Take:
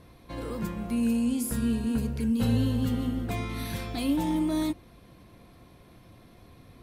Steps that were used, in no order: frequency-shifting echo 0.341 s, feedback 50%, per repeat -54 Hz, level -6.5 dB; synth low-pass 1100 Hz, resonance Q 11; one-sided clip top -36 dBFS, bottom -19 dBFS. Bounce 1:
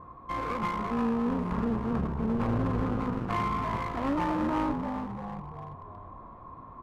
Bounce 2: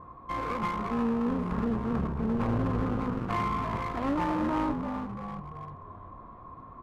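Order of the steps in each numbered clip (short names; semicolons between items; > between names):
synth low-pass > frequency-shifting echo > one-sided clip; frequency-shifting echo > synth low-pass > one-sided clip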